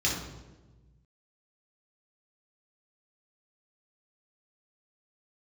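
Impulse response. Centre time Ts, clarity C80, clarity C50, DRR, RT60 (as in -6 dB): 47 ms, 6.5 dB, 3.0 dB, -4.0 dB, 1.2 s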